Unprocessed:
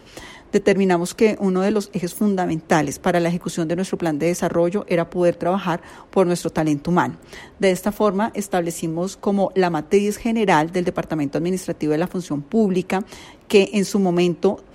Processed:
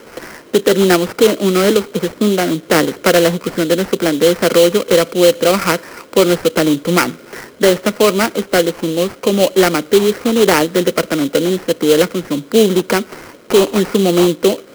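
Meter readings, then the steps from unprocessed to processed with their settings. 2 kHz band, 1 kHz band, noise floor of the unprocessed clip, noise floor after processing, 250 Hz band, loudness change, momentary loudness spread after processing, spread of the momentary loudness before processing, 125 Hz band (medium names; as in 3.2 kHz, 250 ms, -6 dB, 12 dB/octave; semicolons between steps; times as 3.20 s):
+7.5 dB, +3.0 dB, -46 dBFS, -40 dBFS, +4.5 dB, +6.5 dB, 6 LU, 7 LU, +2.0 dB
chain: cabinet simulation 200–4700 Hz, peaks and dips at 480 Hz +8 dB, 810 Hz -9 dB, 1.4 kHz +9 dB; sample-rate reducer 3.6 kHz, jitter 20%; loudness maximiser +7.5 dB; trim -1 dB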